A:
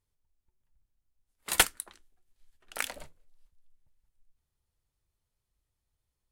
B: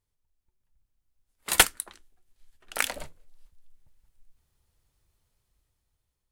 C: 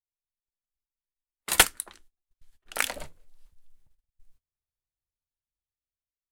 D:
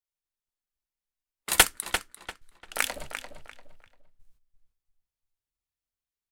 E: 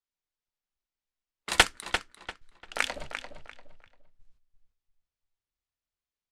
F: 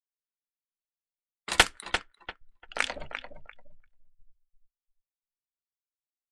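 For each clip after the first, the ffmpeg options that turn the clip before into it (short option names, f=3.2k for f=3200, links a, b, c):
-af "dynaudnorm=f=310:g=7:m=10dB"
-af "agate=range=-25dB:threshold=-55dB:ratio=16:detection=peak"
-filter_complex "[0:a]asplit=2[a][b];[b]adelay=345,lowpass=f=4.5k:p=1,volume=-8dB,asplit=2[c][d];[d]adelay=345,lowpass=f=4.5k:p=1,volume=0.29,asplit=2[e][f];[f]adelay=345,lowpass=f=4.5k:p=1,volume=0.29[g];[a][c][e][g]amix=inputs=4:normalize=0"
-af "lowpass=5.8k"
-af "afftdn=nr=23:nf=-47"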